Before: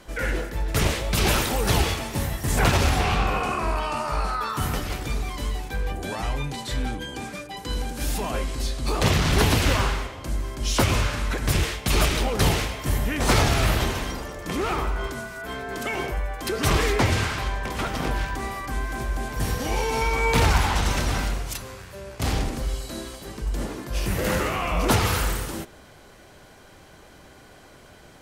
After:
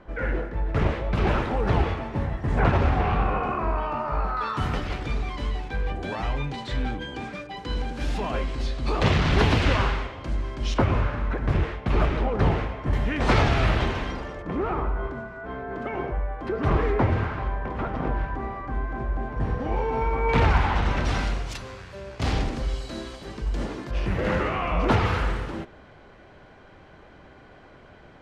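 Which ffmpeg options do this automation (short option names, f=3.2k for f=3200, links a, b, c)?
-af "asetnsamples=n=441:p=0,asendcmd='4.37 lowpass f 3400;10.74 lowpass f 1500;12.93 lowpass f 3000;14.42 lowpass f 1300;20.29 lowpass f 2400;21.05 lowpass f 4700;23.91 lowpass f 2500',lowpass=1.6k"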